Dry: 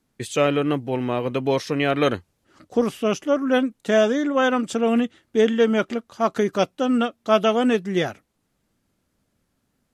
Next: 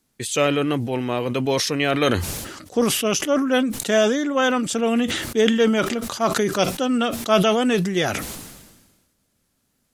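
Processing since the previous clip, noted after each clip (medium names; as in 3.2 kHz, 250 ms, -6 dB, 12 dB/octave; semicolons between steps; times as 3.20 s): treble shelf 3.3 kHz +10 dB; decay stretcher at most 44 dB/s; trim -1 dB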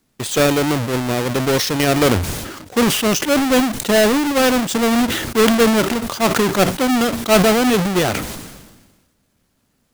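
square wave that keeps the level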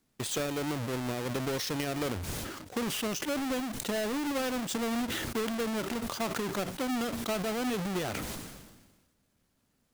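compression 10:1, threshold -21 dBFS, peak gain reduction 13 dB; trim -9 dB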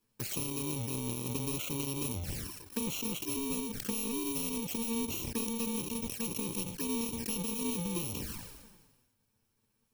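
bit-reversed sample order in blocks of 64 samples; touch-sensitive flanger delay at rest 9.3 ms, full sweep at -31.5 dBFS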